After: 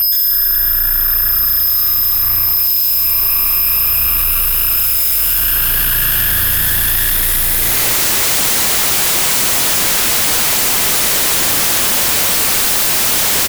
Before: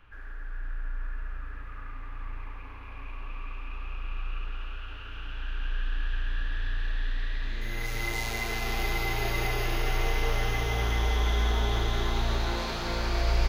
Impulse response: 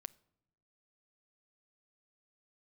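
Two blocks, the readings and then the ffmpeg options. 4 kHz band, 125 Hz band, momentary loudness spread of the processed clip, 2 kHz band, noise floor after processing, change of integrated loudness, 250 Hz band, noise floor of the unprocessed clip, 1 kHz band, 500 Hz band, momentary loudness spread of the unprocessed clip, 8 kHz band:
+20.5 dB, +4.0 dB, 1 LU, +14.0 dB, -14 dBFS, +21.5 dB, +10.5 dB, -40 dBFS, +12.0 dB, +9.0 dB, 15 LU, +31.5 dB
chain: -filter_complex "[0:a]aeval=exprs='val(0)+0.00398*sin(2*PI*13000*n/s)':c=same,equalizer=f=11k:t=o:w=2.3:g=11,asplit=2[a][b];[b]acompressor=threshold=-35dB:ratio=6,volume=2.5dB[c];[a][c]amix=inputs=2:normalize=0,bandreject=f=71.94:t=h:w=4,bandreject=f=143.88:t=h:w=4,bandreject=f=215.82:t=h:w=4,bandreject=f=287.76:t=h:w=4,bandreject=f=359.7:t=h:w=4,bandreject=f=431.64:t=h:w=4,bandreject=f=503.58:t=h:w=4,bandreject=f=575.52:t=h:w=4,bandreject=f=647.46:t=h:w=4,bandreject=f=719.4:t=h:w=4,bandreject=f=791.34:t=h:w=4,bandreject=f=863.28:t=h:w=4,bandreject=f=935.22:t=h:w=4,bandreject=f=1.00716k:t=h:w=4,bandreject=f=1.0791k:t=h:w=4,bandreject=f=1.15104k:t=h:w=4,bandreject=f=1.22298k:t=h:w=4,bandreject=f=1.29492k:t=h:w=4,bandreject=f=1.36686k:t=h:w=4,bandreject=f=1.4388k:t=h:w=4,bandreject=f=1.51074k:t=h:w=4,bandreject=f=1.58268k:t=h:w=4,bandreject=f=1.65462k:t=h:w=4,bandreject=f=1.72656k:t=h:w=4,bandreject=f=1.7985k:t=h:w=4,bandreject=f=1.87044k:t=h:w=4,bandreject=f=1.94238k:t=h:w=4,bandreject=f=2.01432k:t=h:w=4,bandreject=f=2.08626k:t=h:w=4,bandreject=f=2.1582k:t=h:w=4,bandreject=f=2.23014k:t=h:w=4,bandreject=f=2.30208k:t=h:w=4,asplit=2[d][e];[e]aecho=0:1:20|46|79.8|123.7|180.9:0.631|0.398|0.251|0.158|0.1[f];[d][f]amix=inputs=2:normalize=0,aeval=exprs='0.299*sin(PI/2*8.91*val(0)/0.299)':c=same"

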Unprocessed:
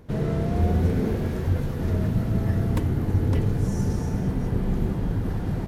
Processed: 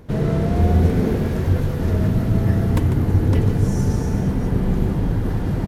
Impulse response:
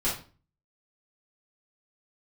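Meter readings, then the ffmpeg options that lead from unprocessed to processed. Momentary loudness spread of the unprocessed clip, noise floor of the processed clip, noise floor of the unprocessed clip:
4 LU, -23 dBFS, -28 dBFS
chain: -af "aecho=1:1:147:0.316,volume=5dB"

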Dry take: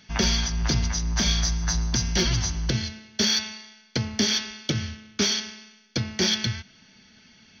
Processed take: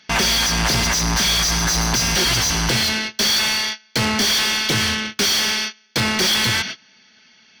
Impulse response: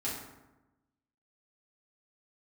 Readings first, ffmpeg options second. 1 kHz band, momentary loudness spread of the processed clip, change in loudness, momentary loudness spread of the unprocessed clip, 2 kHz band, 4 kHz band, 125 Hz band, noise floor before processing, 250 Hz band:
+13.5 dB, 6 LU, +7.5 dB, 10 LU, +12.5 dB, +8.5 dB, +1.5 dB, -56 dBFS, +4.0 dB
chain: -filter_complex "[0:a]agate=range=-25dB:threshold=-47dB:ratio=16:detection=peak,asplit=2[a][b];[b]highpass=f=720:p=1,volume=36dB,asoftclip=type=tanh:threshold=-11dB[c];[a][c]amix=inputs=2:normalize=0,lowpass=f=5.9k:p=1,volume=-6dB"

